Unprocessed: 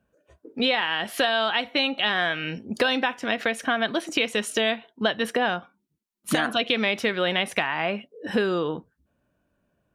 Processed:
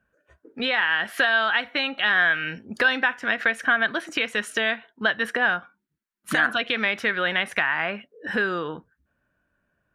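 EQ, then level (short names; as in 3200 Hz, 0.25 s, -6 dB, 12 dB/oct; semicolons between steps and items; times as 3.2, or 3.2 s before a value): low shelf 87 Hz +6 dB; bell 1600 Hz +13.5 dB 1 oct; -5.5 dB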